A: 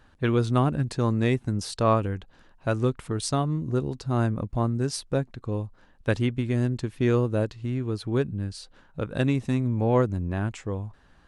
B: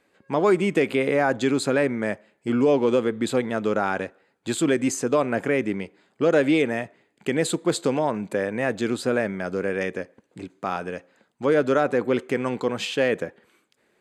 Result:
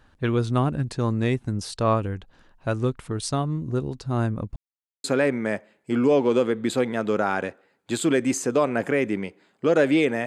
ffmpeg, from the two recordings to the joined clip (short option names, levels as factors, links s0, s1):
-filter_complex "[0:a]apad=whole_dur=10.26,atrim=end=10.26,asplit=2[s0][s1];[s0]atrim=end=4.56,asetpts=PTS-STARTPTS,afade=t=out:st=4.556:d=0.004:c=hsin[s2];[s1]atrim=start=4.56:end=5.04,asetpts=PTS-STARTPTS,volume=0[s3];[1:a]atrim=start=1.61:end=6.83,asetpts=PTS-STARTPTS,afade=t=in:d=0.004:c=hsin[s4];[s2][s3][s4]concat=n=3:v=0:a=1"